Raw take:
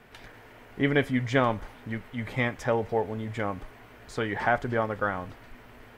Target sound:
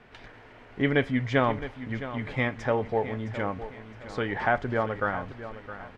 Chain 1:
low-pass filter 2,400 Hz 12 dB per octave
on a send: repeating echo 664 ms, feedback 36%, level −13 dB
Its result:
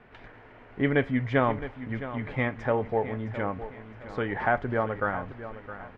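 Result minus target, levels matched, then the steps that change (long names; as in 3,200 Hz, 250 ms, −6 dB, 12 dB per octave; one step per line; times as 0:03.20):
4,000 Hz band −5.0 dB
change: low-pass filter 4,900 Hz 12 dB per octave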